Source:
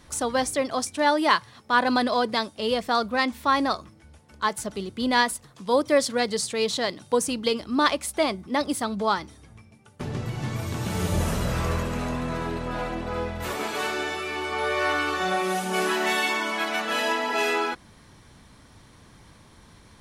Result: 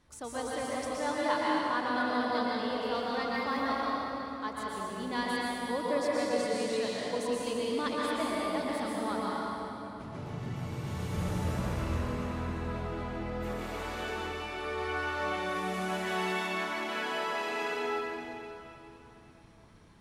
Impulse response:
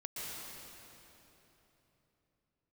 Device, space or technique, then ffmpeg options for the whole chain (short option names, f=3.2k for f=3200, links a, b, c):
swimming-pool hall: -filter_complex "[1:a]atrim=start_sample=2205[a];[0:a][a]afir=irnorm=-1:irlink=0,highshelf=f=4k:g=-5.5,volume=-8dB"